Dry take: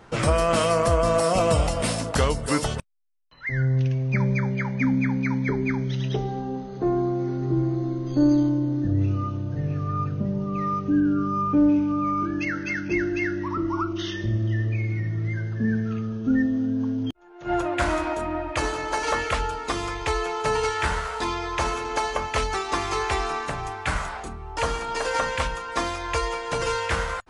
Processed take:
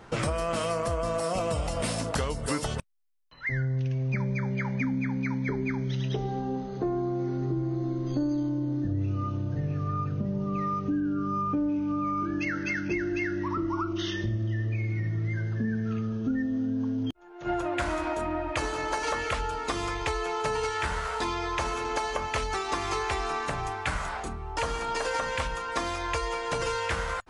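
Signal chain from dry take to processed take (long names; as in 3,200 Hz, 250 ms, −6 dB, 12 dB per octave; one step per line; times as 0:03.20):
downward compressor 5 to 1, threshold −26 dBFS, peak gain reduction 10.5 dB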